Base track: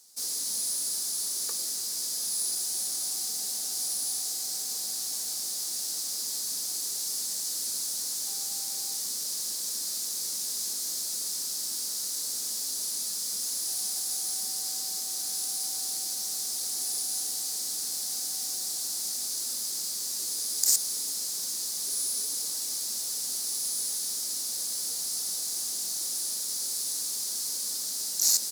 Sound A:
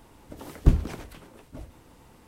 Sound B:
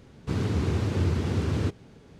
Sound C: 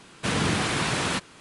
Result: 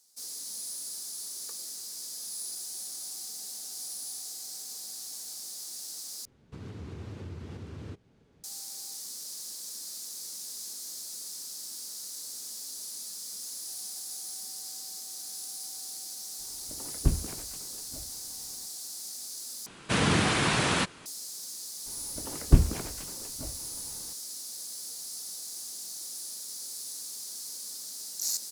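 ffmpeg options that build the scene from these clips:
ffmpeg -i bed.wav -i cue0.wav -i cue1.wav -i cue2.wav -filter_complex "[1:a]asplit=2[link_01][link_02];[0:a]volume=-8dB[link_03];[2:a]alimiter=limit=-20.5dB:level=0:latency=1:release=321[link_04];[link_03]asplit=3[link_05][link_06][link_07];[link_05]atrim=end=6.254[link_08];[link_04]atrim=end=2.19,asetpts=PTS-STARTPTS,volume=-12dB[link_09];[link_06]atrim=start=8.436:end=19.664[link_10];[3:a]atrim=end=1.4[link_11];[link_07]atrim=start=21.056[link_12];[link_01]atrim=end=2.27,asetpts=PTS-STARTPTS,volume=-6.5dB,afade=type=in:duration=0.004:curve=hsin,afade=type=out:start_time=2.266:duration=0.004:curve=hsin,adelay=16390[link_13];[link_02]atrim=end=2.27,asetpts=PTS-STARTPTS,afade=type=in:duration=0.004:curve=hsin,afade=type=out:start_time=2.266:duration=0.004:curve=hsin,adelay=21860[link_14];[link_08][link_09]acrossfade=duration=0.004:curve1=hsin:curve2=hsin[link_15];[link_15][link_10]acrossfade=duration=0.004:curve1=hsin:curve2=hsin[link_16];[link_16][link_11]acrossfade=duration=0.004:curve1=hsin:curve2=hsin[link_17];[link_17][link_12]acrossfade=duration=0.004:curve1=hsin:curve2=hsin[link_18];[link_18][link_13][link_14]amix=inputs=3:normalize=0" out.wav

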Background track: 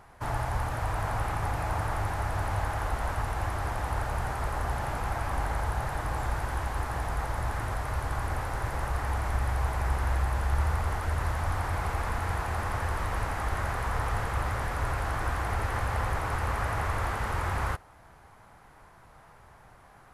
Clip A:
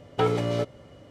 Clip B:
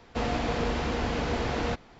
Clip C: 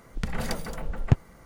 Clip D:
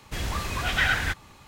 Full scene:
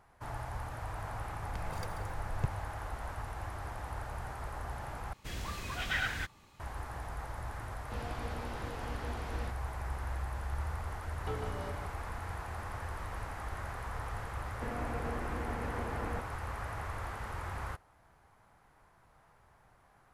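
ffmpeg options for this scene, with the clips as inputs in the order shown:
ffmpeg -i bed.wav -i cue0.wav -i cue1.wav -i cue2.wav -i cue3.wav -filter_complex "[2:a]asplit=2[link_01][link_02];[0:a]volume=-10dB[link_03];[3:a]aecho=1:1:1.9:0.67[link_04];[link_01]flanger=delay=16:depth=3.4:speed=1.6[link_05];[1:a]aecho=1:1:150:0.473[link_06];[link_02]lowpass=frequency=2200:width=0.5412,lowpass=frequency=2200:width=1.3066[link_07];[link_03]asplit=2[link_08][link_09];[link_08]atrim=end=5.134[link_10];[4:a]atrim=end=1.47,asetpts=PTS-STARTPTS,volume=-10dB[link_11];[link_09]atrim=start=6.596[link_12];[link_04]atrim=end=1.45,asetpts=PTS-STARTPTS,volume=-15.5dB,afade=type=in:duration=0.004:curve=hsin,afade=type=out:start_time=1.446:duration=0.004:curve=hsin,adelay=1320[link_13];[link_05]atrim=end=1.99,asetpts=PTS-STARTPTS,volume=-12dB,afade=type=in:duration=0.004:curve=hsin,afade=type=out:start_time=1.986:duration=0.004:curve=hsin,adelay=7750[link_14];[link_06]atrim=end=1.1,asetpts=PTS-STARTPTS,volume=-17dB,afade=type=in:duration=0.004:curve=hsin,afade=type=out:start_time=1.096:duration=0.004:curve=hsin,adelay=11080[link_15];[link_07]atrim=end=1.99,asetpts=PTS-STARTPTS,volume=-10.5dB,afade=type=in:duration=0.004:curve=hsin,afade=type=out:start_time=1.986:duration=0.004:curve=hsin,adelay=14460[link_16];[link_10][link_11]acrossfade=duration=0.004:curve1=hsin:curve2=hsin[link_17];[link_17][link_12]acrossfade=duration=0.004:curve1=hsin:curve2=hsin[link_18];[link_18][link_13][link_14][link_15][link_16]amix=inputs=5:normalize=0" out.wav

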